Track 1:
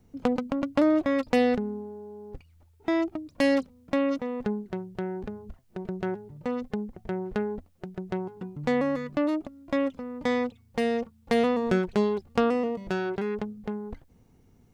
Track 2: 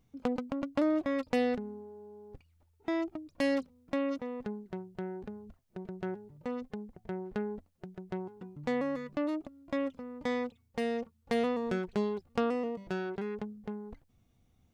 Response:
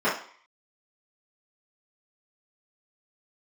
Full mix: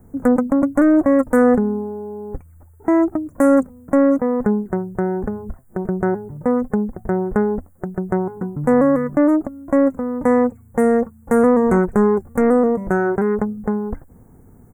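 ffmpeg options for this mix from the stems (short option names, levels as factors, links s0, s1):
-filter_complex "[0:a]aeval=exprs='0.335*(cos(1*acos(clip(val(0)/0.335,-1,1)))-cos(1*PI/2))+0.15*(cos(5*acos(clip(val(0)/0.335,-1,1)))-cos(5*PI/2))':c=same,volume=1.33[s0];[1:a]equalizer=f=5500:t=o:w=1.1:g=9,aexciter=amount=4.7:drive=5.8:freq=5600,adelay=3.9,volume=1[s1];[s0][s1]amix=inputs=2:normalize=0,asuperstop=centerf=3800:order=8:qfactor=0.63"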